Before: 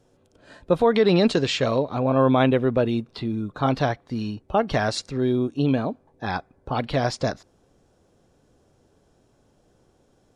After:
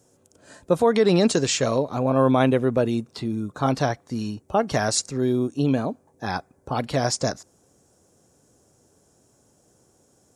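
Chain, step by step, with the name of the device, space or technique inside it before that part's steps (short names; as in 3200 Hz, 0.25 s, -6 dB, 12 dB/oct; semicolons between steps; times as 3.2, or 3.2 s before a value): budget condenser microphone (HPF 73 Hz; resonant high shelf 5100 Hz +11 dB, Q 1.5)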